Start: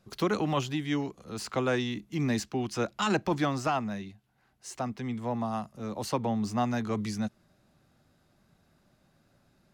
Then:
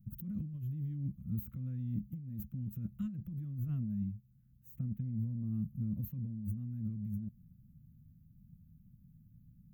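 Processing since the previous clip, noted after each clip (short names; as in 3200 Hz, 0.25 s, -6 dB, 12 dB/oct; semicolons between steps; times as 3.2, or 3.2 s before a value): inverse Chebyshev band-stop 370–9600 Hz, stop band 40 dB; negative-ratio compressor -43 dBFS, ratio -1; gain +5 dB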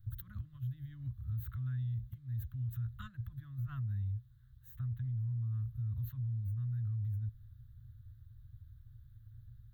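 EQ curve 120 Hz 0 dB, 160 Hz -30 dB, 300 Hz -23 dB, 430 Hz -30 dB, 1000 Hz +2 dB, 1700 Hz +9 dB, 2400 Hz -10 dB, 3700 Hz +8 dB, 5300 Hz -9 dB; limiter -41 dBFS, peak gain reduction 11 dB; gain +9 dB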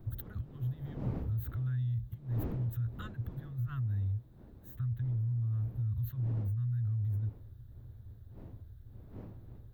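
wind noise 240 Hz -52 dBFS; gain +3.5 dB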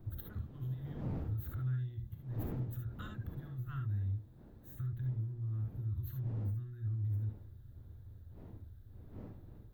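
soft clip -24.5 dBFS, distortion -28 dB; on a send at -3.5 dB: reverb, pre-delay 3 ms; on the sum: gain -3 dB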